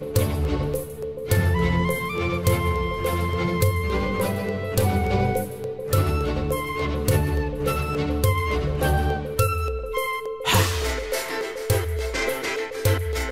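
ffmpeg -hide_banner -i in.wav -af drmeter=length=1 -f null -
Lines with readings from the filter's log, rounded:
Channel 1: DR: 11.3
Overall DR: 11.3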